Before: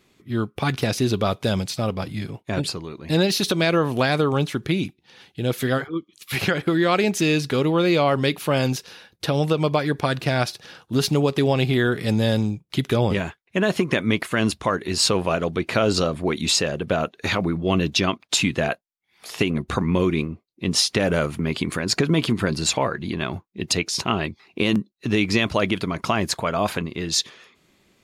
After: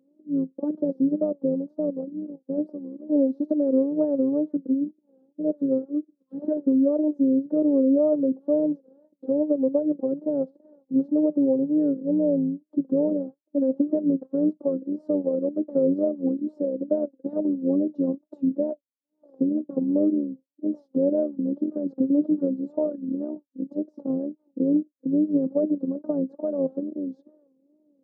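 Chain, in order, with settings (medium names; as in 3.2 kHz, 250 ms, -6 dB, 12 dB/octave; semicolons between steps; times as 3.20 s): robot voice 284 Hz; elliptic band-pass 170–570 Hz, stop band 60 dB; wow and flutter 130 cents; trim +2.5 dB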